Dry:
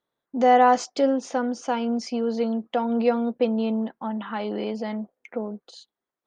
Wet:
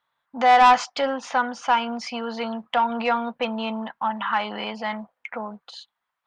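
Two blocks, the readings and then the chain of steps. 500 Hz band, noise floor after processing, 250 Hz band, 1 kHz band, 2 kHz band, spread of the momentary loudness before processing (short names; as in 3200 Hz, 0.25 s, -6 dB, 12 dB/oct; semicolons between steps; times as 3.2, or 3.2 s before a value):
-4.5 dB, -81 dBFS, -6.0 dB, +4.0 dB, +8.0 dB, 14 LU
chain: EQ curve 150 Hz 0 dB, 370 Hz -12 dB, 970 Hz +12 dB, 3000 Hz +10 dB, 6200 Hz -1 dB; soft clip -9.5 dBFS, distortion -11 dB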